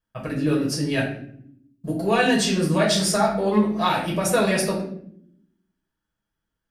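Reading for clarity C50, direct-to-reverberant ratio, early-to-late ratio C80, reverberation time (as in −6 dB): 6.0 dB, −4.5 dB, 9.5 dB, non-exponential decay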